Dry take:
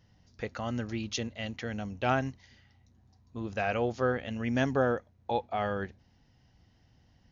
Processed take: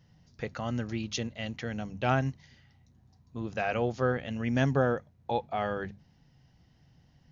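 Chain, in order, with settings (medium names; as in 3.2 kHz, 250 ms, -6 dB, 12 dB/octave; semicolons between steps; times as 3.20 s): peaking EQ 150 Hz +13.5 dB 0.3 oct; hum notches 50/100/150/200 Hz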